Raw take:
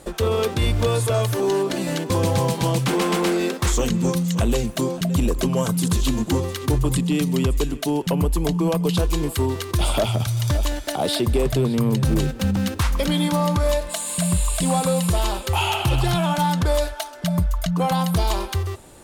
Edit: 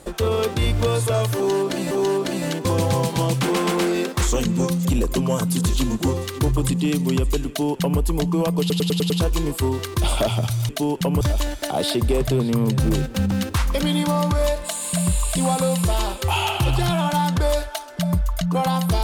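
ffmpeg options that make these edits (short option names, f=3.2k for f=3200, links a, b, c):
-filter_complex "[0:a]asplit=10[a][b][c][d][e][f][g][h][i][j];[a]atrim=end=1.912[k];[b]atrim=start=1.358:end=4.302[l];[c]atrim=start=5.118:end=8.972[m];[d]atrim=start=8.868:end=8.972[n];[e]atrim=start=8.868:end=8.972[o];[f]atrim=start=8.868:end=8.972[p];[g]atrim=start=8.868:end=8.972[q];[h]atrim=start=8.868:end=10.462[r];[i]atrim=start=7.748:end=8.272[s];[j]atrim=start=10.458[t];[k][l]acrossfade=d=0.004:c1=hsin:c2=hsin[u];[u][m]acrossfade=d=0.004:c1=hsin:c2=hsin[v];[v][n]acrossfade=d=0.004:c1=hsin:c2=hsin[w];[w][o]acrossfade=d=0.004:c1=hsin:c2=hsin[x];[x][p]acrossfade=d=0.004:c1=hsin:c2=hsin[y];[y][q]acrossfade=d=0.004:c1=hsin:c2=hsin[z];[z][r]acrossfade=d=0.004:c1=hsin:c2=hsin[aa];[aa][s]acrossfade=d=0.004:c1=hsin:c2=hsin[ab];[ab][t]acrossfade=d=0.004:c1=hsin:c2=hsin"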